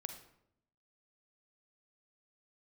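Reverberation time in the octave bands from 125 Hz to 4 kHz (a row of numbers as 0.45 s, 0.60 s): 1.0 s, 1.0 s, 0.80 s, 0.70 s, 0.60 s, 0.50 s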